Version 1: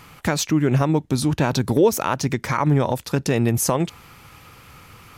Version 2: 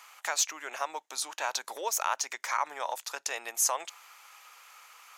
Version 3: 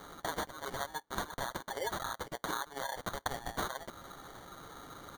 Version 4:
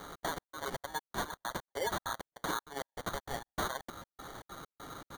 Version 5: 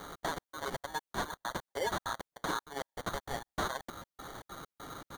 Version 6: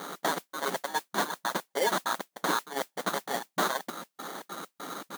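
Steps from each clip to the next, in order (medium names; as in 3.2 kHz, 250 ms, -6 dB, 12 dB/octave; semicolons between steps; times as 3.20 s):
high-pass 720 Hz 24 dB/octave; peaking EQ 6.7 kHz +7.5 dB 0.39 oct; trim -6 dB
comb 7.4 ms, depth 86%; compression 12:1, threshold -35 dBFS, peak gain reduction 16 dB; sample-and-hold 17×; trim +1.5 dB
hard clipper -31.5 dBFS, distortion -13 dB; trance gate "xx.xx..x" 197 bpm -60 dB; trim +3 dB
slew-rate limiter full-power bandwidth 150 Hz; trim +1 dB
partial rectifier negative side -3 dB; modulation noise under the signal 13 dB; brick-wall FIR high-pass 160 Hz; trim +8 dB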